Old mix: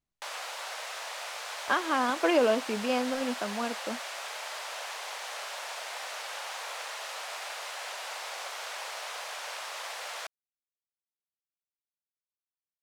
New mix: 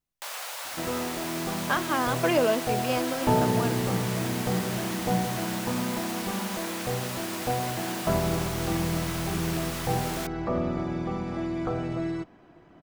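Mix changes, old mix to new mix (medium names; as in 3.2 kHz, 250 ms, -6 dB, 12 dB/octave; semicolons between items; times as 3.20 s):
second sound: unmuted; master: remove distance through air 53 m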